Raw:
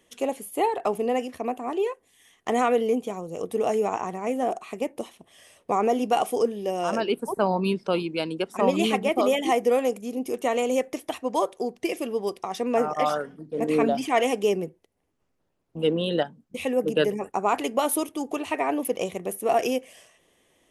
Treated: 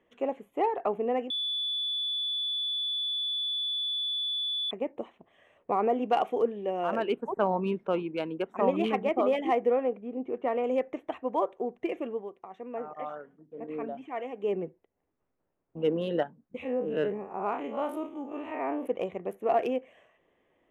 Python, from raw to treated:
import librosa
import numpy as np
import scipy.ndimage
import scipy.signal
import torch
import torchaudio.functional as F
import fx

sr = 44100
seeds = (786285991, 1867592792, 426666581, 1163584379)

y = fx.peak_eq(x, sr, hz=4100.0, db=4.0, octaves=2.2, at=(6.02, 7.6))
y = fx.air_absorb(y, sr, metres=260.0, at=(9.7, 10.64))
y = fx.spec_blur(y, sr, span_ms=89.0, at=(16.62, 18.85), fade=0.02)
y = fx.edit(y, sr, fx.bleep(start_s=1.3, length_s=3.41, hz=3460.0, db=-18.5),
    fx.fade_down_up(start_s=12.06, length_s=2.52, db=-10.0, fade_s=0.23), tone=tone)
y = fx.wiener(y, sr, points=9)
y = fx.bass_treble(y, sr, bass_db=-4, treble_db=-14)
y = y * 10.0 ** (-3.0 / 20.0)